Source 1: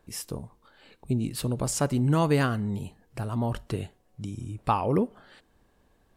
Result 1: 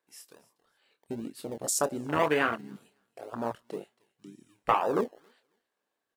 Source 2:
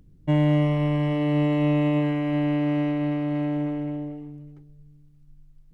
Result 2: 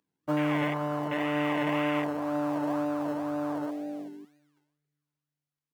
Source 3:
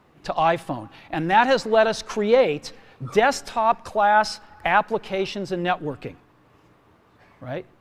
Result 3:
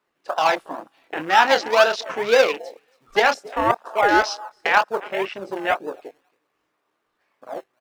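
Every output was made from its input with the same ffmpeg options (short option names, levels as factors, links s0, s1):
-filter_complex "[0:a]highpass=460,asplit=2[s0][s1];[s1]adelay=26,volume=0.422[s2];[s0][s2]amix=inputs=2:normalize=0,aecho=1:1:275|550:0.106|0.0222,acrossover=split=790[s3][s4];[s3]acrusher=samples=29:mix=1:aa=0.000001:lfo=1:lforange=17.4:lforate=2[s5];[s5][s4]amix=inputs=2:normalize=0,afwtdn=0.0224,volume=1.41"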